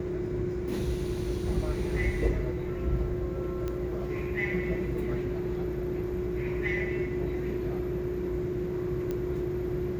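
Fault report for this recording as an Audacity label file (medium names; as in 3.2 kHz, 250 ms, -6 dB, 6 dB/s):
3.680000	3.680000	pop -21 dBFS
9.110000	9.110000	pop -21 dBFS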